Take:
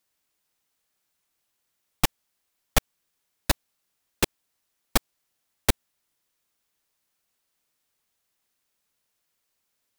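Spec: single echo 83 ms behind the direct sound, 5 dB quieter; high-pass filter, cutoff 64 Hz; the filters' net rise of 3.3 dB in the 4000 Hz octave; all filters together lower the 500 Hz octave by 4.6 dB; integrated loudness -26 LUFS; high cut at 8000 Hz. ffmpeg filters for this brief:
-af "highpass=64,lowpass=8k,equalizer=f=500:t=o:g=-6,equalizer=f=4k:t=o:g=4.5,aecho=1:1:83:0.562,volume=3dB"

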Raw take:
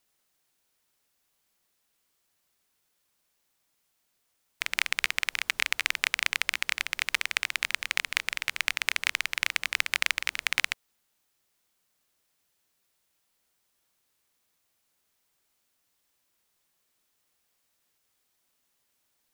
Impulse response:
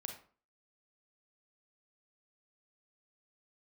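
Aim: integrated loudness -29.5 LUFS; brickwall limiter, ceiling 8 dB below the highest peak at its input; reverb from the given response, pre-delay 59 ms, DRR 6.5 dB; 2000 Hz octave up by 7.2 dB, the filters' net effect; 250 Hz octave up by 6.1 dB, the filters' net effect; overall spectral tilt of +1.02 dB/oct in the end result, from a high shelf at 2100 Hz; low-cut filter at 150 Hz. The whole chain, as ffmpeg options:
-filter_complex "[0:a]highpass=150,equalizer=f=250:t=o:g=8.5,equalizer=f=2k:t=o:g=4.5,highshelf=f=2.1k:g=6.5,alimiter=limit=-3.5dB:level=0:latency=1,asplit=2[a][b];[1:a]atrim=start_sample=2205,adelay=59[c];[b][c]afir=irnorm=-1:irlink=0,volume=-4dB[d];[a][d]amix=inputs=2:normalize=0,volume=-5dB"

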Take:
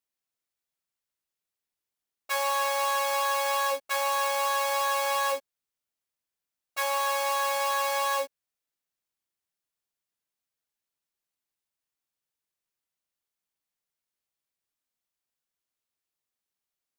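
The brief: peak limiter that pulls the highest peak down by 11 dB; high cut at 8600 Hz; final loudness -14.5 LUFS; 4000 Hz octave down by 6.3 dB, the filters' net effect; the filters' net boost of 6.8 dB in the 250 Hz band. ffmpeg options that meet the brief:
-af "lowpass=8.6k,equalizer=f=250:t=o:g=7.5,equalizer=f=4k:t=o:g=-8,volume=22dB,alimiter=limit=-6.5dB:level=0:latency=1"

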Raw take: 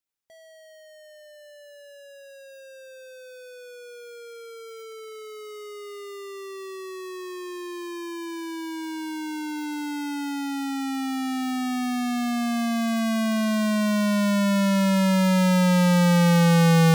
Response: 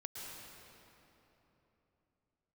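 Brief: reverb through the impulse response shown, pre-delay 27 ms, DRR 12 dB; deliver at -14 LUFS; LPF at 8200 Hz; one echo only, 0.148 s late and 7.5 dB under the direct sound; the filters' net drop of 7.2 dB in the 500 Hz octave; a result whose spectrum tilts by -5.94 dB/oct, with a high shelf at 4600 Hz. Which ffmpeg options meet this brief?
-filter_complex "[0:a]lowpass=8.2k,equalizer=f=500:t=o:g=-8.5,highshelf=f=4.6k:g=-7,aecho=1:1:148:0.422,asplit=2[a][b];[1:a]atrim=start_sample=2205,adelay=27[c];[b][c]afir=irnorm=-1:irlink=0,volume=-10.5dB[d];[a][d]amix=inputs=2:normalize=0,volume=9.5dB"

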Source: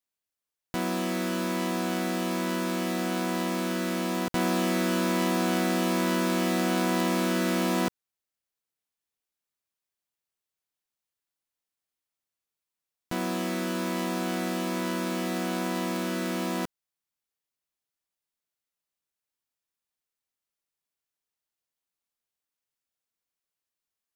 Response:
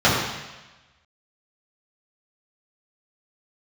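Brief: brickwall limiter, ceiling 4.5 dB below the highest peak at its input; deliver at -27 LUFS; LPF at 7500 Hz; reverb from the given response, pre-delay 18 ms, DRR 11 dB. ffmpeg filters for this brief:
-filter_complex "[0:a]lowpass=7.5k,alimiter=limit=-20.5dB:level=0:latency=1,asplit=2[a][b];[1:a]atrim=start_sample=2205,adelay=18[c];[b][c]afir=irnorm=-1:irlink=0,volume=-34.5dB[d];[a][d]amix=inputs=2:normalize=0,volume=2dB"

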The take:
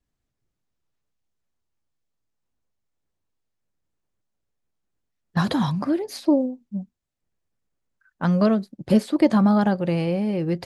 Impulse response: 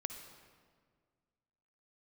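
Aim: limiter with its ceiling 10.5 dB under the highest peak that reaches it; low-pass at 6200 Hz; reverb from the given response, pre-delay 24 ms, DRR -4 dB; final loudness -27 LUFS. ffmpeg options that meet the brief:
-filter_complex "[0:a]lowpass=6.2k,alimiter=limit=-16.5dB:level=0:latency=1,asplit=2[a][b];[1:a]atrim=start_sample=2205,adelay=24[c];[b][c]afir=irnorm=-1:irlink=0,volume=5dB[d];[a][d]amix=inputs=2:normalize=0,volume=-7.5dB"

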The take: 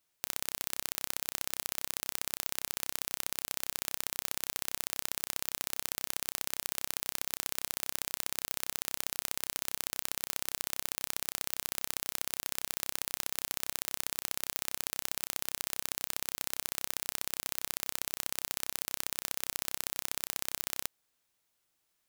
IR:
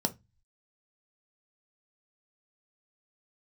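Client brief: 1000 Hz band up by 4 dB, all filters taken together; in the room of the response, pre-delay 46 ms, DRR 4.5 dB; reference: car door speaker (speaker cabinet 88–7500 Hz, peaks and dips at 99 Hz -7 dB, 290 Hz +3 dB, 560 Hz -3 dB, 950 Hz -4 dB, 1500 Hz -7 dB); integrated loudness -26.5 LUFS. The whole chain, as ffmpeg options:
-filter_complex "[0:a]equalizer=f=1k:t=o:g=9,asplit=2[a][b];[1:a]atrim=start_sample=2205,adelay=46[c];[b][c]afir=irnorm=-1:irlink=0,volume=-10dB[d];[a][d]amix=inputs=2:normalize=0,highpass=88,equalizer=f=99:t=q:w=4:g=-7,equalizer=f=290:t=q:w=4:g=3,equalizer=f=560:t=q:w=4:g=-3,equalizer=f=950:t=q:w=4:g=-4,equalizer=f=1.5k:t=q:w=4:g=-7,lowpass=f=7.5k:w=0.5412,lowpass=f=7.5k:w=1.3066,volume=11.5dB"

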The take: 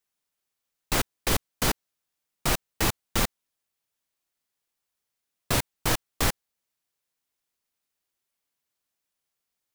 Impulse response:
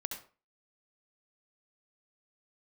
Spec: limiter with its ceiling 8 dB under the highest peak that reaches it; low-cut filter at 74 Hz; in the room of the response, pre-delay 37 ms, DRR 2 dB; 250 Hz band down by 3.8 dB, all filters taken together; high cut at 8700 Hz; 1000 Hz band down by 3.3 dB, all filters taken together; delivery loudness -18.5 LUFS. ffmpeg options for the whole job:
-filter_complex "[0:a]highpass=74,lowpass=8.7k,equalizer=f=250:t=o:g=-5,equalizer=f=1k:t=o:g=-4,alimiter=limit=-21.5dB:level=0:latency=1,asplit=2[a][b];[1:a]atrim=start_sample=2205,adelay=37[c];[b][c]afir=irnorm=-1:irlink=0,volume=-2.5dB[d];[a][d]amix=inputs=2:normalize=0,volume=15.5dB"

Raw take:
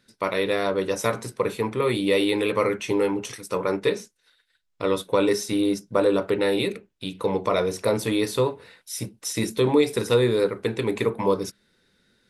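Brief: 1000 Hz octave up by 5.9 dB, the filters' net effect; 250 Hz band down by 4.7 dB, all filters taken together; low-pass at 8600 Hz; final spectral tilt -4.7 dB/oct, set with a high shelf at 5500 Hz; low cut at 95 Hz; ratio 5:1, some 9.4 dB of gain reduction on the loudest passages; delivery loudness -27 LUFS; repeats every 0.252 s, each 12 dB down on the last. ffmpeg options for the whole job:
-af "highpass=95,lowpass=8.6k,equalizer=f=250:t=o:g=-7,equalizer=f=1k:t=o:g=7.5,highshelf=f=5.5k:g=-8.5,acompressor=threshold=-25dB:ratio=5,aecho=1:1:252|504|756:0.251|0.0628|0.0157,volume=3.5dB"

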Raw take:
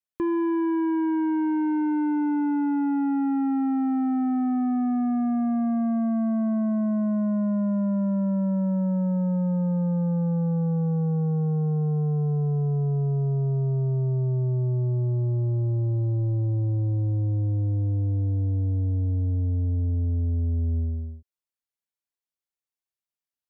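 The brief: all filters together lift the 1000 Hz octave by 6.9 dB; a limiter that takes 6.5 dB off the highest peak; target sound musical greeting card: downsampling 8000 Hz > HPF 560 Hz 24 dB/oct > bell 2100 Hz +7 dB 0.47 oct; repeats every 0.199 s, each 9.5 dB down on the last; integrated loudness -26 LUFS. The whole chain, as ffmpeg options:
-af "equalizer=f=1k:t=o:g=8.5,alimiter=level_in=0.5dB:limit=-24dB:level=0:latency=1,volume=-0.5dB,aecho=1:1:199|398|597|796:0.335|0.111|0.0365|0.012,aresample=8000,aresample=44100,highpass=f=560:w=0.5412,highpass=f=560:w=1.3066,equalizer=f=2.1k:t=o:w=0.47:g=7,volume=12dB"

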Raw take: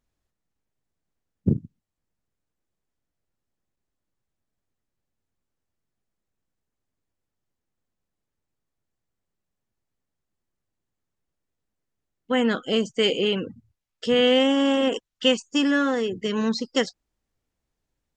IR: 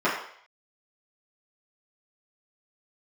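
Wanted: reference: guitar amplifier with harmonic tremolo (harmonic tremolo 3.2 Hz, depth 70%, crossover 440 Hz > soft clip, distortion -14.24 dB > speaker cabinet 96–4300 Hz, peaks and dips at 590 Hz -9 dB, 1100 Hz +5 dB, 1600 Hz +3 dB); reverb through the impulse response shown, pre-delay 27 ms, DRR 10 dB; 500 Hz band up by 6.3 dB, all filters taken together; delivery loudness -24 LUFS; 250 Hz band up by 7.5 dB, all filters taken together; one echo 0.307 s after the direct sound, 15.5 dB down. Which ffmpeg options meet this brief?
-filter_complex "[0:a]equalizer=f=250:t=o:g=6.5,equalizer=f=500:t=o:g=8.5,aecho=1:1:307:0.168,asplit=2[a][b];[1:a]atrim=start_sample=2205,adelay=27[c];[b][c]afir=irnorm=-1:irlink=0,volume=-26.5dB[d];[a][d]amix=inputs=2:normalize=0,acrossover=split=440[e][f];[e]aeval=exprs='val(0)*(1-0.7/2+0.7/2*cos(2*PI*3.2*n/s))':c=same[g];[f]aeval=exprs='val(0)*(1-0.7/2-0.7/2*cos(2*PI*3.2*n/s))':c=same[h];[g][h]amix=inputs=2:normalize=0,asoftclip=threshold=-12.5dB,highpass=96,equalizer=f=590:t=q:w=4:g=-9,equalizer=f=1.1k:t=q:w=4:g=5,equalizer=f=1.6k:t=q:w=4:g=3,lowpass=f=4.3k:w=0.5412,lowpass=f=4.3k:w=1.3066,volume=-1.5dB"

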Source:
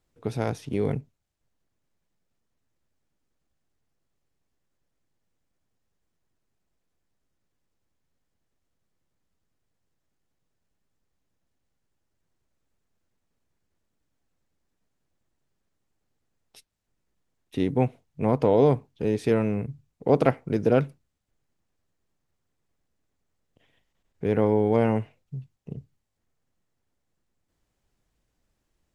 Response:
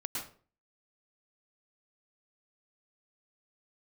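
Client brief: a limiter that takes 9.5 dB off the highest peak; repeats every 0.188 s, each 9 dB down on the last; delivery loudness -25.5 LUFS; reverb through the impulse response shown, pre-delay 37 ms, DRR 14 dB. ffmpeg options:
-filter_complex "[0:a]alimiter=limit=-15dB:level=0:latency=1,aecho=1:1:188|376|564|752:0.355|0.124|0.0435|0.0152,asplit=2[a][b];[1:a]atrim=start_sample=2205,adelay=37[c];[b][c]afir=irnorm=-1:irlink=0,volume=-16dB[d];[a][d]amix=inputs=2:normalize=0,volume=3dB"

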